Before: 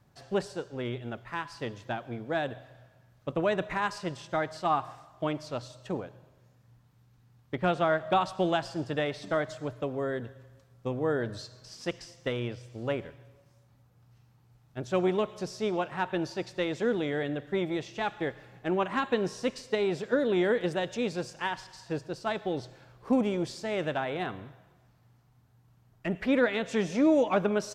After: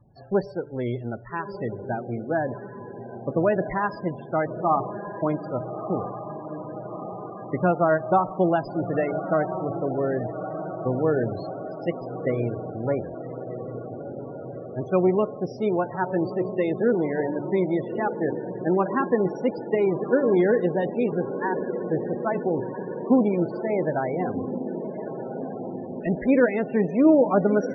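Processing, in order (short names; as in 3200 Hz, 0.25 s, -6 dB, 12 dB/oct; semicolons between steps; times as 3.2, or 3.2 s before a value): tilt shelf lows +3.5 dB, about 1400 Hz; de-hum 145.6 Hz, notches 6; on a send: diffused feedback echo 1.315 s, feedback 68%, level -9 dB; on the sum: loudest bins only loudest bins 32; gain +3.5 dB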